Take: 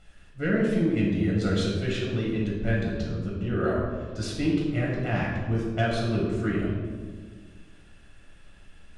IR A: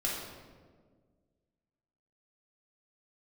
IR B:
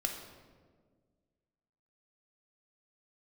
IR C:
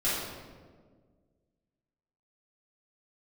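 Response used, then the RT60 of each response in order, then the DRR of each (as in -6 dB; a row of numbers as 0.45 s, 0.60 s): A; 1.7 s, 1.7 s, 1.6 s; -4.5 dB, 2.5 dB, -11.0 dB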